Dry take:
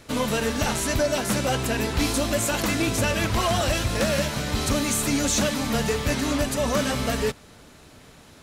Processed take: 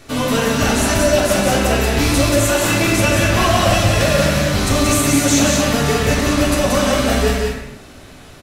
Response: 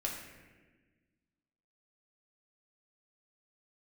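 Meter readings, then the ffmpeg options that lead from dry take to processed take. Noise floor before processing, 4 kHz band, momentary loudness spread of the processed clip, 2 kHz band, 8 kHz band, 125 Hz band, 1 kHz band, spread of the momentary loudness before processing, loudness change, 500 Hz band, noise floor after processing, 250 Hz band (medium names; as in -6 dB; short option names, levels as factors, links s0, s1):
-50 dBFS, +8.0 dB, 3 LU, +9.0 dB, +7.5 dB, +9.5 dB, +9.0 dB, 3 LU, +8.5 dB, +9.0 dB, -39 dBFS, +8.5 dB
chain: -filter_complex "[0:a]aecho=1:1:180.8|230.3:0.631|0.282[s0];[1:a]atrim=start_sample=2205,afade=t=out:st=0.35:d=0.01,atrim=end_sample=15876[s1];[s0][s1]afir=irnorm=-1:irlink=0,volume=1.78"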